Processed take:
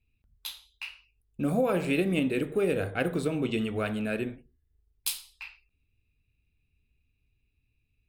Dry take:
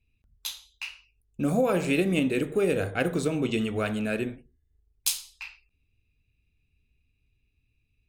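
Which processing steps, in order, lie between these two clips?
bell 6500 Hz -10 dB 0.55 oct; gain -2 dB

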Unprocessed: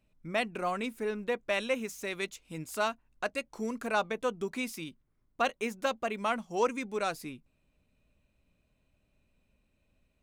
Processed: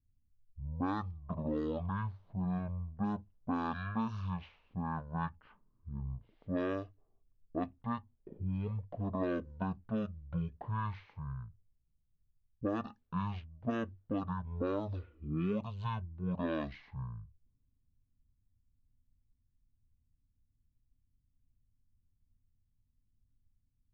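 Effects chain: low-pass opened by the level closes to 330 Hz, open at -26.5 dBFS; speed mistake 78 rpm record played at 33 rpm; compressor 6:1, threshold -31 dBFS, peak gain reduction 9.5 dB

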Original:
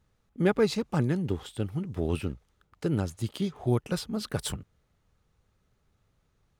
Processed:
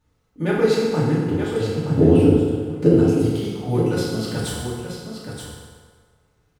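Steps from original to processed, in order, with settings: 1.88–2.88 graphic EQ 125/250/500 Hz +10/+10/+10 dB; echo 0.925 s -7.5 dB; FDN reverb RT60 1.7 s, low-frequency decay 0.8×, high-frequency decay 0.75×, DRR -7.5 dB; gain -2 dB

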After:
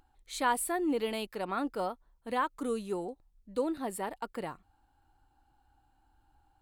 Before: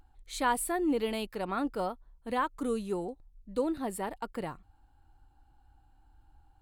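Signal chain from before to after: low shelf 140 Hz -10 dB

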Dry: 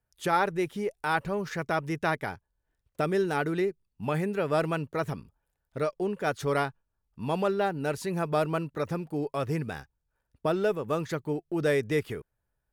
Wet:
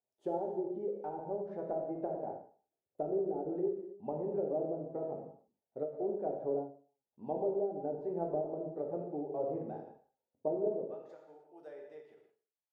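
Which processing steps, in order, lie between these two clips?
HPF 350 Hz 12 dB/oct, from 10.84 s 1500 Hz; treble ducked by the level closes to 480 Hz, closed at -25.5 dBFS; EQ curve 810 Hz 0 dB, 1100 Hz -19 dB, 2300 Hz -29 dB; non-linear reverb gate 0.35 s falling, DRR 0 dB; ending taper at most 140 dB/s; gain -5 dB

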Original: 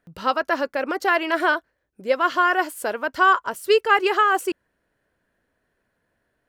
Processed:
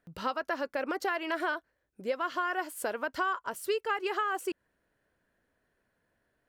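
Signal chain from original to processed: compressor 4:1, threshold -25 dBFS, peak gain reduction 12 dB; gain -4 dB

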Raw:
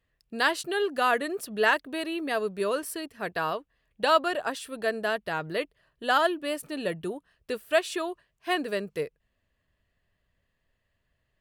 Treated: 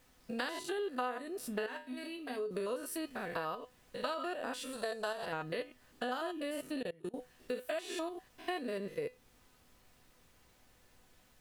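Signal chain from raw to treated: stepped spectrum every 0.1 s; added noise pink -67 dBFS; 1.66–2.51 resonator 85 Hz, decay 0.31 s, harmonics odd, mix 80%; dynamic EQ 430 Hz, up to +3 dB, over -38 dBFS, Q 0.81; resonator 250 Hz, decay 0.19 s, harmonics all, mix 70%; compressor 5:1, threshold -44 dBFS, peak gain reduction 19.5 dB; 4.73–5.26 graphic EQ 125/250/1000/2000/4000/8000 Hz +4/-9/+7/-6/+6/+10 dB; 6.74–7.14 level quantiser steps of 23 dB; gain +8.5 dB

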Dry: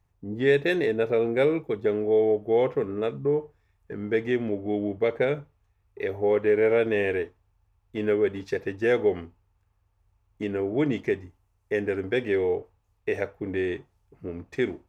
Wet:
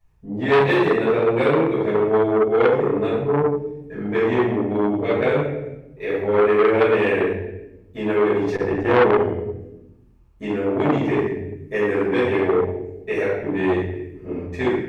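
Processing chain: 8.55–9.09 tilt -2 dB/oct; shoebox room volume 350 m³, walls mixed, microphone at 6 m; core saturation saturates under 1200 Hz; gain -6.5 dB

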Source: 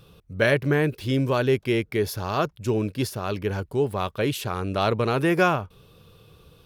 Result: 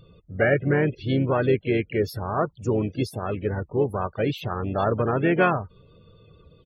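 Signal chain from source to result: loudest bins only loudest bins 32; harmoniser -4 st -14 dB, +4 st -12 dB

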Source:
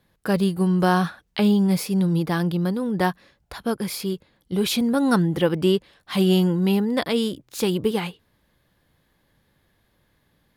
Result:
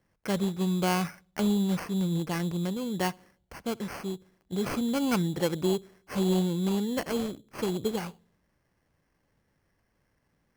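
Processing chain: darkening echo 64 ms, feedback 54%, low-pass 930 Hz, level -23.5 dB; sample-rate reducer 3700 Hz, jitter 0%; gain -7.5 dB

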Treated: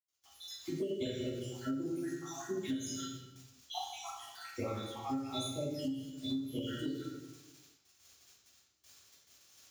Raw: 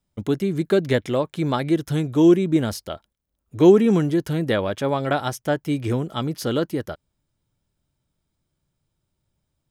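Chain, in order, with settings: random spectral dropouts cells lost 82%; HPF 85 Hz 12 dB/oct; notch 2400 Hz, Q 23; resonator 270 Hz, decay 0.46 s, harmonics odd, mix 90%; crackle 87/s -54 dBFS; gate with hold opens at -50 dBFS; reverb RT60 1.2 s, pre-delay 76 ms; compressor 12:1, threshold -29 dBFS, peak gain reduction 12 dB; pre-emphasis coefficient 0.9; gain +15 dB

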